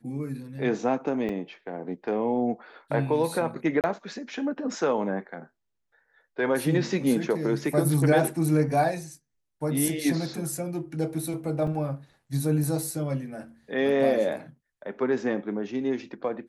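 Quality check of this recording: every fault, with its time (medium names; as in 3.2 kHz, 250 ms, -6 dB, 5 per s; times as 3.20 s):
1.29 s: dropout 2.5 ms
3.81–3.84 s: dropout 28 ms
11.67 s: dropout 3.7 ms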